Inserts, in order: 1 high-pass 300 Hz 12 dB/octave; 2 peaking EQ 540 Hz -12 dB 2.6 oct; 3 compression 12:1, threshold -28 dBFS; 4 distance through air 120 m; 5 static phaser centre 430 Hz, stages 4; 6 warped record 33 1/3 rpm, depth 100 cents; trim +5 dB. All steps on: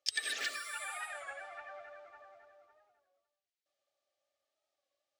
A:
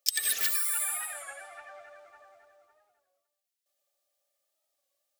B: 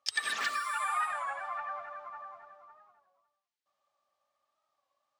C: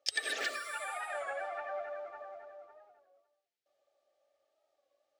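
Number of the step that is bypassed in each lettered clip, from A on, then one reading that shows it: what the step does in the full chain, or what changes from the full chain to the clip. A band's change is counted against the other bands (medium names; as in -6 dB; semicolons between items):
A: 4, 8 kHz band +13.5 dB; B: 5, 1 kHz band +12.5 dB; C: 2, 500 Hz band +10.0 dB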